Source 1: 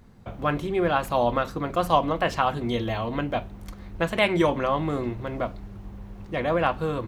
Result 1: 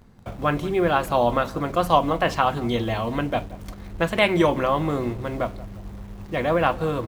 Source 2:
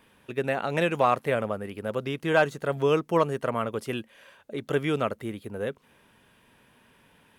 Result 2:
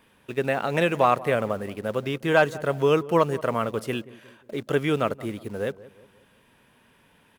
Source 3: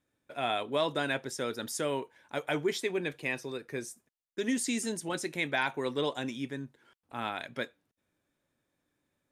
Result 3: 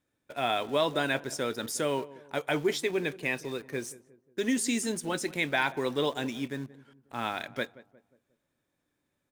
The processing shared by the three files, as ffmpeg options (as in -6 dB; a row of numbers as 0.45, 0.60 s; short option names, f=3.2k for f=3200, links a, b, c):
-filter_complex "[0:a]asplit=2[a][b];[b]acrusher=bits=6:mix=0:aa=0.000001,volume=-9.5dB[c];[a][c]amix=inputs=2:normalize=0,asplit=2[d][e];[e]adelay=179,lowpass=f=1.1k:p=1,volume=-17.5dB,asplit=2[f][g];[g]adelay=179,lowpass=f=1.1k:p=1,volume=0.47,asplit=2[h][i];[i]adelay=179,lowpass=f=1.1k:p=1,volume=0.47,asplit=2[j][k];[k]adelay=179,lowpass=f=1.1k:p=1,volume=0.47[l];[d][f][h][j][l]amix=inputs=5:normalize=0"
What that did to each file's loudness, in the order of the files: +2.5, +2.5, +2.5 LU